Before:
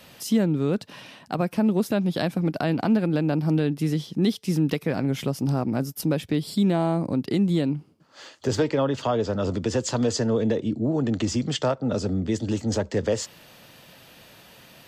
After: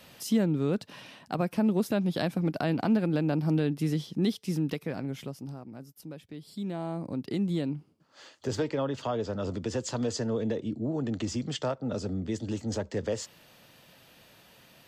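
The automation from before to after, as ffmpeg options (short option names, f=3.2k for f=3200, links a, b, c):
-af "volume=8dB,afade=t=out:st=4.03:d=1.18:silence=0.446684,afade=t=out:st=5.21:d=0.39:silence=0.398107,afade=t=in:st=6.34:d=1.09:silence=0.251189"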